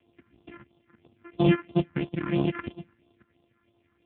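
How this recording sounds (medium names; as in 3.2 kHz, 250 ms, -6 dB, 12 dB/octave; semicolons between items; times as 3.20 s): a buzz of ramps at a fixed pitch in blocks of 128 samples; phasing stages 4, 3 Hz, lowest notch 620–1800 Hz; AMR-NB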